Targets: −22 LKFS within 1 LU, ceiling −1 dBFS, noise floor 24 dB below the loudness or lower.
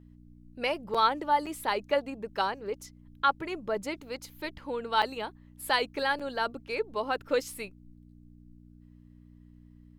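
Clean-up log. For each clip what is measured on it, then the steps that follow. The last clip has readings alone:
number of dropouts 4; longest dropout 5.8 ms; mains hum 60 Hz; hum harmonics up to 300 Hz; level of the hum −51 dBFS; integrated loudness −31.0 LKFS; sample peak −11.5 dBFS; target loudness −22.0 LKFS
→ repair the gap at 0:00.94/0:01.46/0:05.02/0:06.19, 5.8 ms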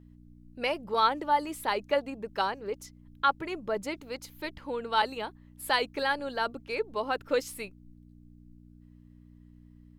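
number of dropouts 0; mains hum 60 Hz; hum harmonics up to 300 Hz; level of the hum −51 dBFS
→ hum removal 60 Hz, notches 5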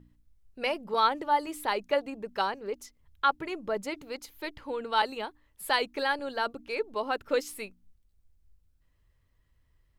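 mains hum none found; integrated loudness −31.0 LKFS; sample peak −11.0 dBFS; target loudness −22.0 LKFS
→ level +9 dB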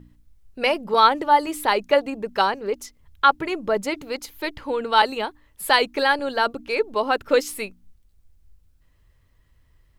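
integrated loudness −22.0 LKFS; sample peak −2.0 dBFS; background noise floor −60 dBFS

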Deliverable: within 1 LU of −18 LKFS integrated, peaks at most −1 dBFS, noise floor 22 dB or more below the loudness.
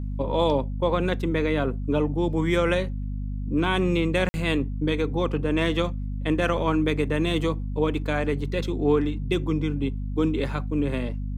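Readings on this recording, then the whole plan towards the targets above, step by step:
number of dropouts 1; longest dropout 50 ms; mains hum 50 Hz; hum harmonics up to 250 Hz; level of the hum −27 dBFS; integrated loudness −25.5 LKFS; sample peak −9.0 dBFS; target loudness −18.0 LKFS
→ repair the gap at 0:04.29, 50 ms
hum removal 50 Hz, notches 5
level +7.5 dB

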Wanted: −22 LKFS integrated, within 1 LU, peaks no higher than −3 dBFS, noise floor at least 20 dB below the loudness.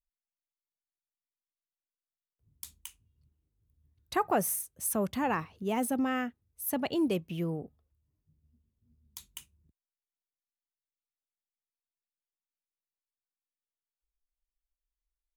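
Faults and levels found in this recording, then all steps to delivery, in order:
integrated loudness −32.0 LKFS; sample peak −17.5 dBFS; target loudness −22.0 LKFS
→ level +10 dB

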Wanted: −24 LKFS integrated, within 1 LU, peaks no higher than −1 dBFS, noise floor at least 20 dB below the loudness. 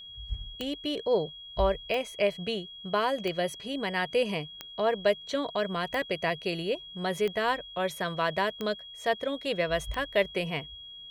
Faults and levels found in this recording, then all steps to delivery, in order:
number of clicks 8; interfering tone 3,300 Hz; level of the tone −43 dBFS; integrated loudness −30.5 LKFS; sample peak −13.0 dBFS; target loudness −24.0 LKFS
→ click removal
notch filter 3,300 Hz, Q 30
level +6.5 dB

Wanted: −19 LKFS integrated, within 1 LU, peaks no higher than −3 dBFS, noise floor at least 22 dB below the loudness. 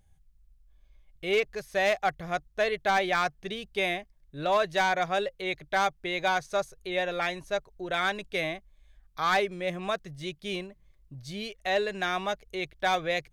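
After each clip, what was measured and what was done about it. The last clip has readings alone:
share of clipped samples 0.4%; peaks flattened at −18.0 dBFS; integrated loudness −29.5 LKFS; sample peak −18.0 dBFS; target loudness −19.0 LKFS
→ clipped peaks rebuilt −18 dBFS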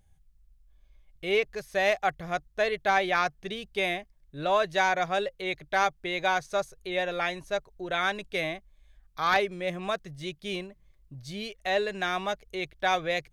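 share of clipped samples 0.0%; integrated loudness −29.0 LKFS; sample peak −9.0 dBFS; target loudness −19.0 LKFS
→ level +10 dB
brickwall limiter −3 dBFS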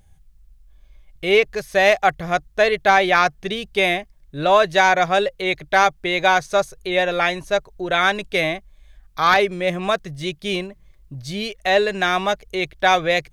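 integrated loudness −19.0 LKFS; sample peak −3.0 dBFS; background noise floor −53 dBFS

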